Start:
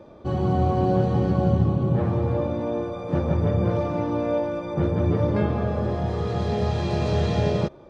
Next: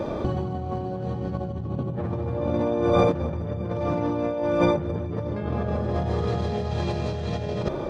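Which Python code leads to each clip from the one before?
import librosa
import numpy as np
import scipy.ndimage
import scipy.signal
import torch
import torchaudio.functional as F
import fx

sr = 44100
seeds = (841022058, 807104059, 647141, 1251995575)

y = fx.over_compress(x, sr, threshold_db=-34.0, ratio=-1.0)
y = y * librosa.db_to_amplitude(7.5)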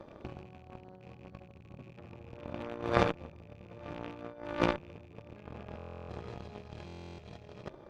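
y = fx.rattle_buzz(x, sr, strikes_db=-29.0, level_db=-27.0)
y = fx.cheby_harmonics(y, sr, harmonics=(3, 4), levels_db=(-10, -34), full_scale_db=-6.5)
y = fx.buffer_glitch(y, sr, at_s=(5.77, 6.86), block=1024, repeats=13)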